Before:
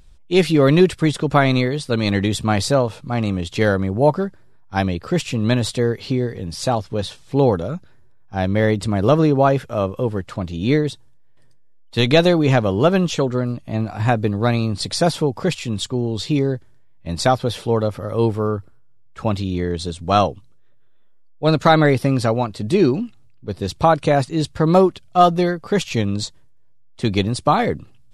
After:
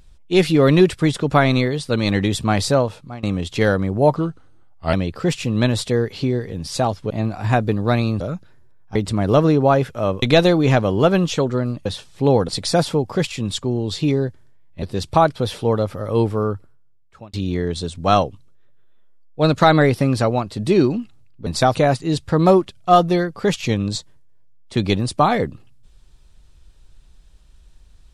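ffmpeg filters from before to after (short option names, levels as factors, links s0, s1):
-filter_complex "[0:a]asplit=15[s0][s1][s2][s3][s4][s5][s6][s7][s8][s9][s10][s11][s12][s13][s14];[s0]atrim=end=3.23,asetpts=PTS-STARTPTS,afade=t=out:st=2.82:d=0.41:silence=0.0944061[s15];[s1]atrim=start=3.23:end=4.164,asetpts=PTS-STARTPTS,afade=t=in:d=0.004:c=hsin:silence=0.0944061[s16];[s2]atrim=start=4.16:end=4.81,asetpts=PTS-STARTPTS,asetrate=37044,aresample=44100[s17];[s3]atrim=start=4.806:end=6.982[s18];[s4]atrim=start=13.658:end=14.762[s19];[s5]atrim=start=7.608:end=8.362[s20];[s6]atrim=start=8.698:end=9.972[s21];[s7]atrim=start=12.028:end=13.662[s22];[s8]atrim=start=6.978:end=7.612[s23];[s9]atrim=start=14.758:end=17.102[s24];[s10]atrim=start=23.498:end=24.032[s25];[s11]atrim=start=17.388:end=19.37,asetpts=PTS-STARTPTS,afade=t=out:st=1.192:d=0.79[s26];[s12]atrim=start=19.37:end=23.502,asetpts=PTS-STARTPTS,afade=t=in:d=0.004:c=hsin[s27];[s13]atrim=start=17.098:end=17.392[s28];[s14]atrim=start=24.028[s29];[s15][s16]concat=n=2:v=0:a=1[s30];[s30][s17]acrossfade=d=0.004:c1=hsin:c2=hsin[s31];[s31][s18]acrossfade=d=0.004:c1=hsin:c2=hsin[s32];[s32][s19]acrossfade=d=0.004:c1=hsin:c2=hsin[s33];[s33][s20]acrossfade=d=0.004:c1=hsin:c2=hsin[s34];[s34][s21]acrossfade=d=0.004:c1=hsin:c2=hsin[s35];[s35][s22]acrossfade=d=0.004:c1=hsin:c2=hsin[s36];[s36][s23]acrossfade=d=0.004:c1=hsin:c2=hsin[s37];[s37][s24]acrossfade=d=0.004:c1=hsin:c2=hsin[s38];[s38][s25]acrossfade=d=0.004:c1=hsin:c2=hsin[s39];[s26][s27]concat=n=2:v=0:a=1[s40];[s39][s40]acrossfade=d=0.004:c1=hsin:c2=hsin[s41];[s41][s28]acrossfade=d=0.004:c1=hsin:c2=hsin[s42];[s42][s29]acrossfade=d=0.004:c1=hsin:c2=hsin"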